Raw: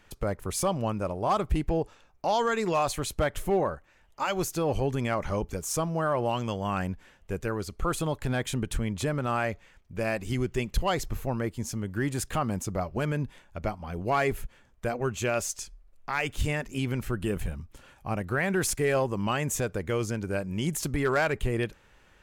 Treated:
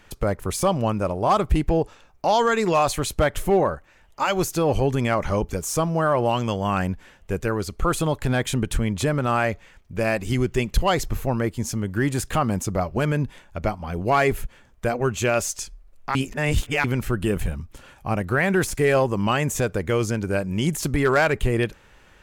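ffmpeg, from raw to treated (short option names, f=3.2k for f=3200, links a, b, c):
-filter_complex "[0:a]asplit=3[a][b][c];[a]atrim=end=16.152[d];[b]atrim=start=16.148:end=16.842,asetpts=PTS-STARTPTS,areverse[e];[c]atrim=start=16.838[f];[d][e]acrossfade=d=0.004:c1=hsin:c2=hsin[g];[g][f]acrossfade=d=0.004:c1=hsin:c2=hsin,deesser=0.55,volume=6.5dB"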